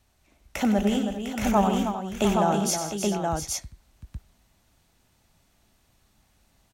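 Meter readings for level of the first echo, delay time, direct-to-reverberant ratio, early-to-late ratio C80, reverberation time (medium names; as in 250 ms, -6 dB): -9.5 dB, 94 ms, no reverb, no reverb, no reverb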